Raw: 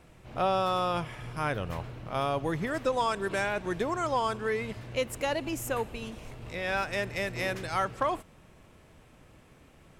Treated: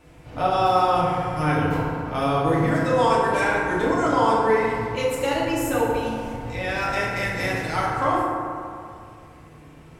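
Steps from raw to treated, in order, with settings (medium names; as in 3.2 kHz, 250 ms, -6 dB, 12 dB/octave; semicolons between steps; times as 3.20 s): FDN reverb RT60 2.4 s, low-frequency decay 1×, high-frequency decay 0.35×, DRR -7.5 dB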